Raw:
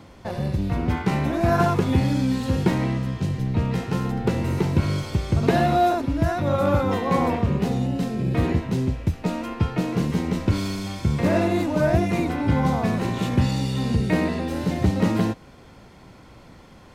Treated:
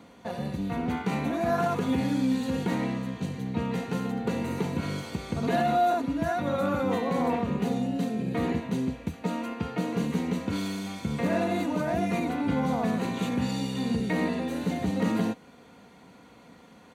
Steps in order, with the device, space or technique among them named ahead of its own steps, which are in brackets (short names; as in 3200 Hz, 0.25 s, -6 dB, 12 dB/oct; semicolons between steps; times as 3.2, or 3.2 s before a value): PA system with an anti-feedback notch (HPF 130 Hz 12 dB/oct; Butterworth band-stop 5200 Hz, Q 8; limiter -13.5 dBFS, peak gain reduction 7.5 dB); comb 4.2 ms, depth 47%; gain -4.5 dB